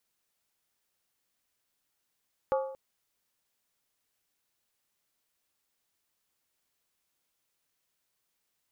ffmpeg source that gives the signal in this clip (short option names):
-f lavfi -i "aevalsrc='0.0708*pow(10,-3*t/0.7)*sin(2*PI*533*t)+0.0376*pow(10,-3*t/0.554)*sin(2*PI*849.6*t)+0.02*pow(10,-3*t/0.479)*sin(2*PI*1138.5*t)+0.0106*pow(10,-3*t/0.462)*sin(2*PI*1223.8*t)+0.00562*pow(10,-3*t/0.43)*sin(2*PI*1414*t)':d=0.23:s=44100"